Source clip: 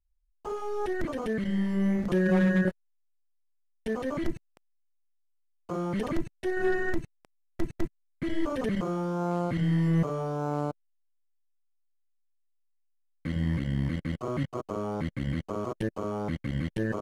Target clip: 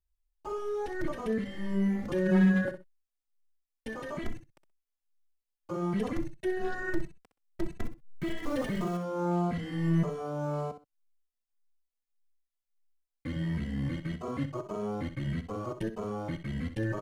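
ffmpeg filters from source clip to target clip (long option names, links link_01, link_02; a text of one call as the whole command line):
ffmpeg -i in.wav -filter_complex "[0:a]asettb=1/sr,asplit=3[link_01][link_02][link_03];[link_01]atrim=end=7.804[link_04];[link_02]atrim=start=7.8:end=8.97,asetpts=PTS-STARTPTS,afade=type=in:duration=0.004:curve=qsin,afade=type=out:start_time=1.166:duration=0.004:curve=qsin,aeval=exprs='val(0)+0.5*0.0133*sgn(val(0))':channel_layout=same[link_05];[link_03]atrim=start=8.966[link_06];[link_04][link_05]acrossfade=duration=0.004:curve1=hsin:curve2=qsin[link_07];[link_07][link_06]acrossfade=duration=0.004:curve1=qsin:curve2=hsin,aecho=1:1:63|126:0.282|0.0507,asplit=2[link_08][link_09];[link_09]adelay=2.7,afreqshift=1.7[link_10];[link_08][link_10]amix=inputs=2:normalize=1" out.wav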